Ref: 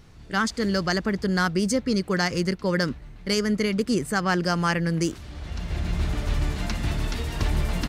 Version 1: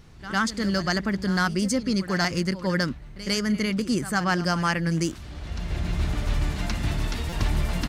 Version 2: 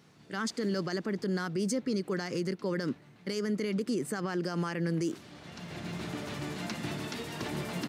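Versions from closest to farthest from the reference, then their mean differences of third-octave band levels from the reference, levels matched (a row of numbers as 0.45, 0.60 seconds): 1, 2; 1.5, 3.0 decibels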